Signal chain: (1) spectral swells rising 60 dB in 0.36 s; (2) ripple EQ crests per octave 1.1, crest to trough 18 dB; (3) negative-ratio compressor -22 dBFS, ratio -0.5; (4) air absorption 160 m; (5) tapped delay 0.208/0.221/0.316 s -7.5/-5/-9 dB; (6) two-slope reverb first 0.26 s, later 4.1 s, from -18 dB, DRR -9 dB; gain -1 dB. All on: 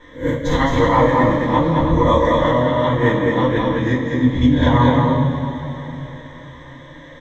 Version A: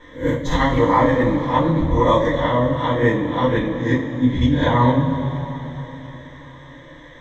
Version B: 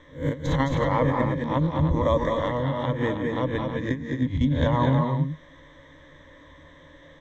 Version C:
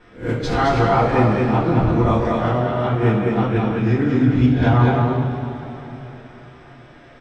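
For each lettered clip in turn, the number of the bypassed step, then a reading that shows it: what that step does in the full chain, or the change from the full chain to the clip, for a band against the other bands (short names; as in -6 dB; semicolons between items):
5, echo-to-direct 11.5 dB to 9.0 dB; 6, echo-to-direct 11.5 dB to -2.0 dB; 2, 125 Hz band +4.0 dB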